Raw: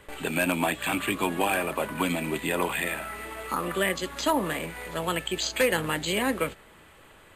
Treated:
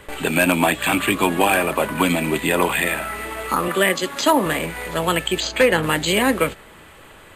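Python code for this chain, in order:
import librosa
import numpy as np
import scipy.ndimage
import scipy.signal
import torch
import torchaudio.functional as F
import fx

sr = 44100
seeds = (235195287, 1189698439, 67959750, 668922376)

y = fx.highpass(x, sr, hz=160.0, slope=12, at=(3.68, 4.46))
y = fx.high_shelf(y, sr, hz=5500.0, db=-11.0, at=(5.4, 5.83))
y = y * librosa.db_to_amplitude(8.5)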